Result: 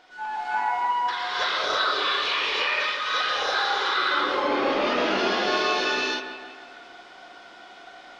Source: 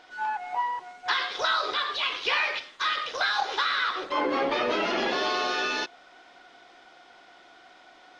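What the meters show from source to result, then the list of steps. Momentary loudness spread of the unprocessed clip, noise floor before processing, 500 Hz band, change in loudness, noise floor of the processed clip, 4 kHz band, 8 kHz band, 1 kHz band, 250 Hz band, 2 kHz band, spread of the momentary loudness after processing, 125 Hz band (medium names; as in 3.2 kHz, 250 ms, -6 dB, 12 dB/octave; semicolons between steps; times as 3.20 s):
5 LU, -54 dBFS, +3.5 dB, +3.0 dB, -47 dBFS, +3.5 dB, +3.5 dB, +3.5 dB, +4.0 dB, +3.0 dB, 9 LU, no reading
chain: peak limiter -21.5 dBFS, peak gain reduction 9 dB; feedback echo behind a low-pass 163 ms, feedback 51%, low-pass 3 kHz, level -9.5 dB; gated-style reverb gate 370 ms rising, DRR -7.5 dB; trim -2 dB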